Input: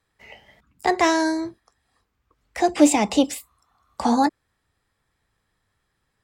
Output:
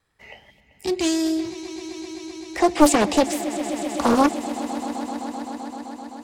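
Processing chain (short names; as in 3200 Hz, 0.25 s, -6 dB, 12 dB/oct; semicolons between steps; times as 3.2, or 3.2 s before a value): spectral gain 0.5–1.45, 390–2200 Hz -18 dB; vibrato 2.6 Hz 15 cents; swelling echo 0.129 s, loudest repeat 5, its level -16.5 dB; Doppler distortion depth 0.72 ms; gain +1.5 dB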